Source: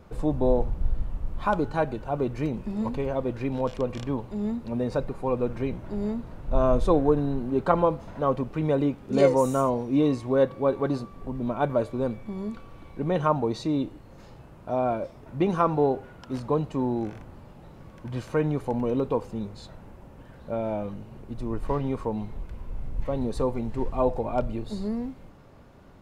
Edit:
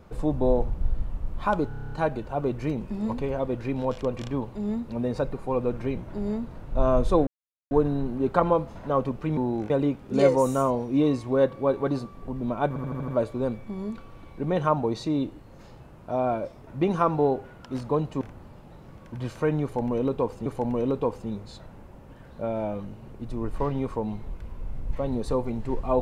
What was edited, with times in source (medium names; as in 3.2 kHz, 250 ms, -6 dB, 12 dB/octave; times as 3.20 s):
1.68 s: stutter 0.03 s, 9 plays
7.03 s: insert silence 0.44 s
11.67 s: stutter 0.08 s, 6 plays
16.80–17.13 s: move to 8.69 s
18.55–19.38 s: loop, 2 plays